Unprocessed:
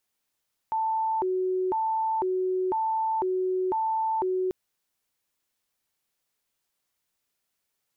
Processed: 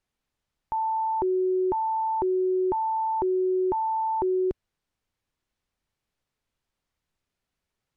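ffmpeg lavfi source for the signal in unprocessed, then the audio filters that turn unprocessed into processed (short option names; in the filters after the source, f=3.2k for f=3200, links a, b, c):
-f lavfi -i "aevalsrc='0.0668*sin(2*PI*(628.5*t+257.5/1*(0.5-abs(mod(1*t,1)-0.5))))':d=3.79:s=44100"
-af "aemphasis=mode=reproduction:type=bsi"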